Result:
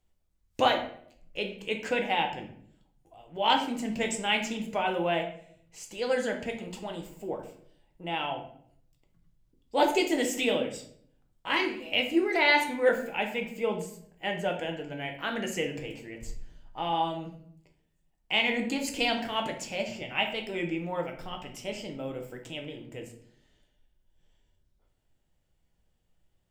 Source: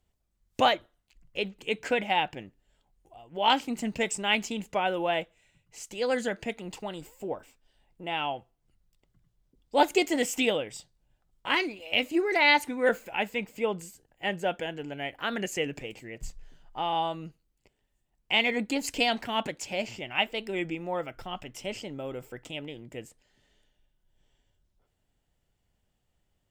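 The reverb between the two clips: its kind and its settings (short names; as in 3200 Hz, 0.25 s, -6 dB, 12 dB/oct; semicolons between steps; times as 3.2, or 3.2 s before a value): shoebox room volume 97 m³, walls mixed, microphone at 0.61 m; gain -2.5 dB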